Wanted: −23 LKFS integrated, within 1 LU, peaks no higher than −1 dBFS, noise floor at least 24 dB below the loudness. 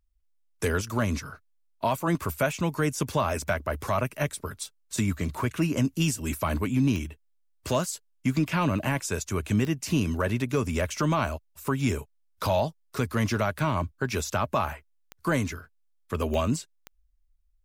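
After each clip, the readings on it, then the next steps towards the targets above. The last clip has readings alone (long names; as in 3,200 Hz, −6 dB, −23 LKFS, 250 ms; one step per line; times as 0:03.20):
number of clicks 6; integrated loudness −28.0 LKFS; sample peak −14.0 dBFS; target loudness −23.0 LKFS
→ click removal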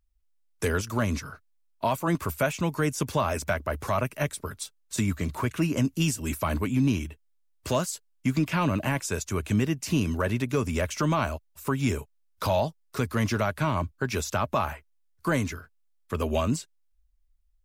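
number of clicks 0; integrated loudness −28.0 LKFS; sample peak −14.0 dBFS; target loudness −23.0 LKFS
→ level +5 dB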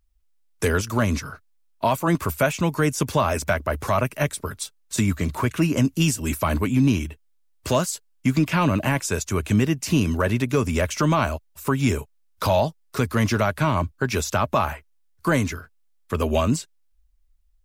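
integrated loudness −23.0 LKFS; sample peak −9.0 dBFS; background noise floor −62 dBFS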